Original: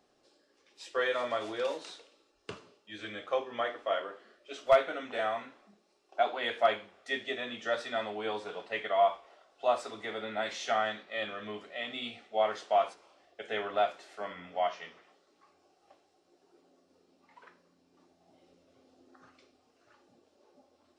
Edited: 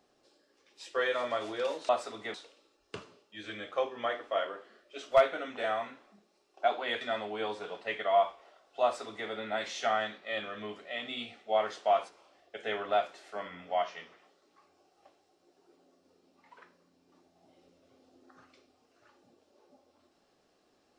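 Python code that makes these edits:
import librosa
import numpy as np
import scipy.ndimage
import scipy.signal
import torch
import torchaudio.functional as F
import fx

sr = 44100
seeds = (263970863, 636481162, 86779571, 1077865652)

y = fx.edit(x, sr, fx.cut(start_s=6.56, length_s=1.3),
    fx.duplicate(start_s=9.68, length_s=0.45, to_s=1.89), tone=tone)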